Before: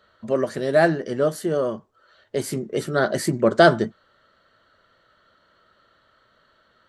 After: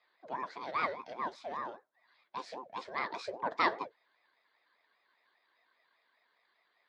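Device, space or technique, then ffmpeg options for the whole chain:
voice changer toy: -af "aeval=exprs='val(0)*sin(2*PI*440*n/s+440*0.5/5*sin(2*PI*5*n/s))':c=same,highpass=590,equalizer=f=810:t=q:w=4:g=-8,equalizer=f=1.3k:t=q:w=4:g=-6,equalizer=f=2.8k:t=q:w=4:g=-6,lowpass=f=4.6k:w=0.5412,lowpass=f=4.6k:w=1.3066,volume=-6.5dB"

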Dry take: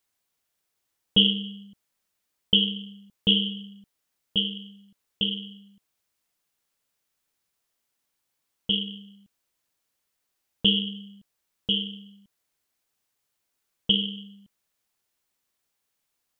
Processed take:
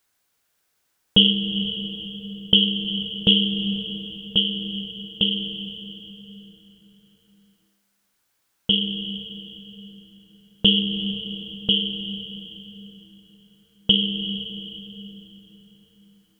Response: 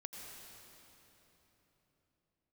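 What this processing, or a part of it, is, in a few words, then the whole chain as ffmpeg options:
ducked reverb: -filter_complex "[0:a]equalizer=f=1.5k:w=4:g=4.5,asplit=3[a][b][c];[1:a]atrim=start_sample=2205[d];[b][d]afir=irnorm=-1:irlink=0[e];[c]apad=whole_len=723143[f];[e][f]sidechaincompress=threshold=-25dB:ratio=8:attack=24:release=402,volume=3.5dB[g];[a][g]amix=inputs=2:normalize=0,volume=2dB"

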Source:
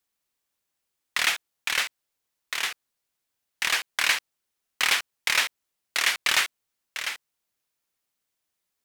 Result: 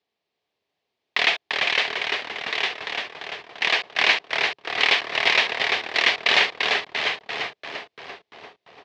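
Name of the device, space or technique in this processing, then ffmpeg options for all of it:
frequency-shifting delay pedal into a guitar cabinet: -filter_complex "[0:a]asplit=8[a][b][c][d][e][f][g][h];[b]adelay=343,afreqshift=-150,volume=-4dB[i];[c]adelay=686,afreqshift=-300,volume=-9.2dB[j];[d]adelay=1029,afreqshift=-450,volume=-14.4dB[k];[e]adelay=1372,afreqshift=-600,volume=-19.6dB[l];[f]adelay=1715,afreqshift=-750,volume=-24.8dB[m];[g]adelay=2058,afreqshift=-900,volume=-30dB[n];[h]adelay=2401,afreqshift=-1050,volume=-35.2dB[o];[a][i][j][k][l][m][n][o]amix=inputs=8:normalize=0,highpass=100,equalizer=f=420:t=q:w=4:g=10,equalizer=f=690:t=q:w=4:g=7,equalizer=f=1.4k:t=q:w=4:g=-9,lowpass=f=4.3k:w=0.5412,lowpass=f=4.3k:w=1.3066,volume=5dB"

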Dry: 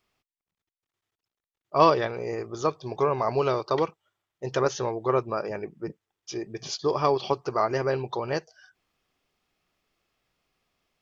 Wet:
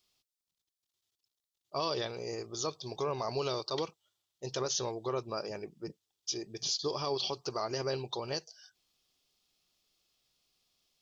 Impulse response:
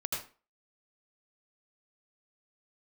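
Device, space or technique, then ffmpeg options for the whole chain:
over-bright horn tweeter: -af "highshelf=f=2.8k:t=q:w=1.5:g=11.5,alimiter=limit=-15.5dB:level=0:latency=1:release=47,volume=-7.5dB"

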